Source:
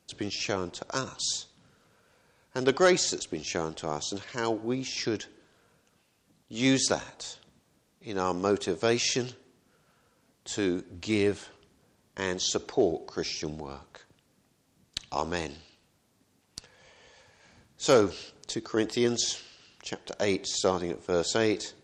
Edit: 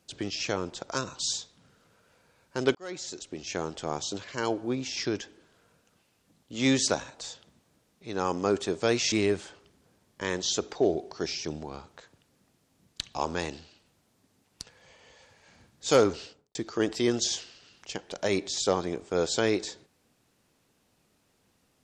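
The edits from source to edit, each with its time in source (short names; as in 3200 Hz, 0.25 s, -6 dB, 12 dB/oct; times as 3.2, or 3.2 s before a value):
2.75–3.75 fade in
9.12–11.09 cut
18.16–18.52 studio fade out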